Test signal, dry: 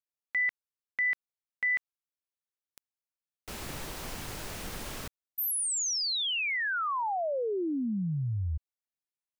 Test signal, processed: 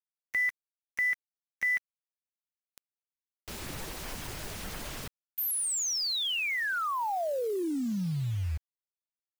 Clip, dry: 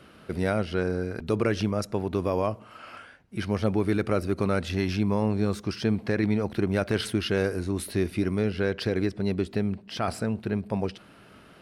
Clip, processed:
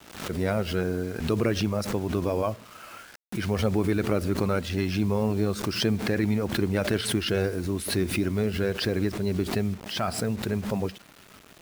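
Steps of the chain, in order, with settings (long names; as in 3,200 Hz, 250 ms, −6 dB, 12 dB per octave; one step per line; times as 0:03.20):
spectral magnitudes quantised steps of 15 dB
bit reduction 8 bits
background raised ahead of every attack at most 86 dB per second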